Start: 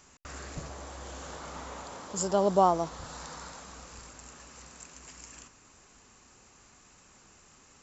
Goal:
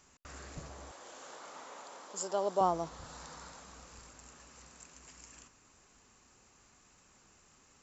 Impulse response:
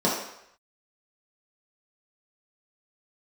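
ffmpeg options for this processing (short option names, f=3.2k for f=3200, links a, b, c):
-filter_complex "[0:a]asettb=1/sr,asplit=3[a][b][c];[a]atrim=end=0.914[d];[b]atrim=start=0.91:end=2.61,asetpts=PTS-STARTPTS,afade=t=in:d=0.004:c=qsin,afade=t=out:st=1.696:d=0.004:c=qsin,highpass=370[e];[c]atrim=start=2.606[f];[d][e]acrossfade=d=0.004:c1=hsin:c2=qsin[g];[g][f]acrossfade=d=0.004:c1=qsin:c2=hsin,asettb=1/sr,asplit=3[h][i][j];[h]atrim=end=3.674[k];[i]atrim=start=3.67:end=4.26,asetpts=PTS-STARTPTS,afade=t=in:d=0.004:c=qsin,afade=t=out:st=0.586:d=0.004:c=qsin,aeval=exprs='0.02*(cos(1*acos(clip(val(0)/0.02,-1,1)))-cos(1*PI/2))+0.000126*(cos(2*acos(clip(val(0)/0.02,-1,1)))-cos(2*PI/2))+0.000398*(cos(4*acos(clip(val(0)/0.02,-1,1)))-cos(4*PI/2))':c=same[l];[j]atrim=start=4.256[m];[k][l]acrossfade=d=0.004:c1=hsin:c2=qsin[n];[n][m]acrossfade=d=0.004:c1=qsin:c2=hsin,volume=-6dB"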